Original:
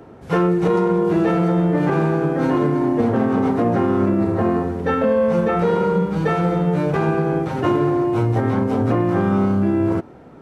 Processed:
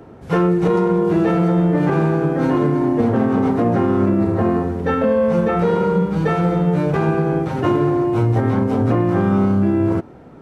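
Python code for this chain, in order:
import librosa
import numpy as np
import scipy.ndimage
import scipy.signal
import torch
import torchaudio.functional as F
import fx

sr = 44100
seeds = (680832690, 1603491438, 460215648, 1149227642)

y = fx.low_shelf(x, sr, hz=220.0, db=3.5)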